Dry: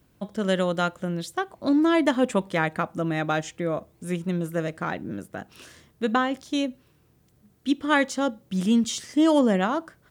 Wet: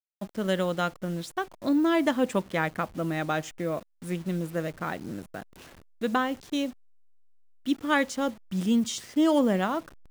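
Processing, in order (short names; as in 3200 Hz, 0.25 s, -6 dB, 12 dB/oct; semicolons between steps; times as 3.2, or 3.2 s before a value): level-crossing sampler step -41 dBFS; gain -3 dB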